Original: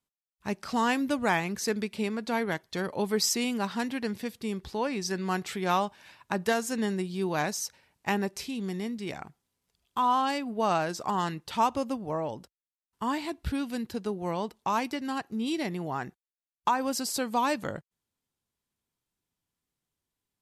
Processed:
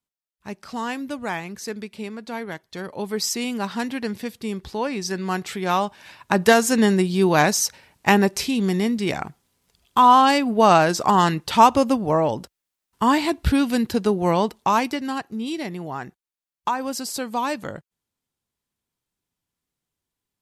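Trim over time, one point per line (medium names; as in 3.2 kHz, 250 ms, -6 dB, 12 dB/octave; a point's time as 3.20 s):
2.61 s -2 dB
3.76 s +4.5 dB
5.71 s +4.5 dB
6.49 s +12 dB
14.37 s +12 dB
15.49 s +2 dB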